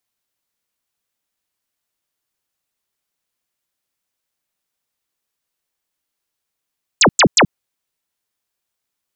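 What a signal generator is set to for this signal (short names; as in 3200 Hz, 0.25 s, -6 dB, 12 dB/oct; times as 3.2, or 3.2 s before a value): burst of laser zaps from 8600 Hz, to 120 Hz, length 0.08 s sine, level -7 dB, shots 3, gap 0.10 s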